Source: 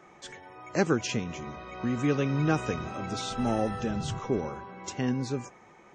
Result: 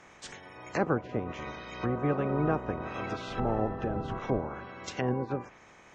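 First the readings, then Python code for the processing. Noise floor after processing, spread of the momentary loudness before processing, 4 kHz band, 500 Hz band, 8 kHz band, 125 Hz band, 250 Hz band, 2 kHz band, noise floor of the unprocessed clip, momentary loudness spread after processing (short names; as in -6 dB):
-55 dBFS, 13 LU, -7.5 dB, -0.5 dB, under -10 dB, -2.5 dB, -3.5 dB, -2.5 dB, -55 dBFS, 12 LU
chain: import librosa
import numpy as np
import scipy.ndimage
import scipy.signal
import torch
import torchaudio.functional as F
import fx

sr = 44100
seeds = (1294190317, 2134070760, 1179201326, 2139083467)

y = fx.spec_clip(x, sr, under_db=15)
y = fx.env_lowpass_down(y, sr, base_hz=910.0, full_db=-27.0)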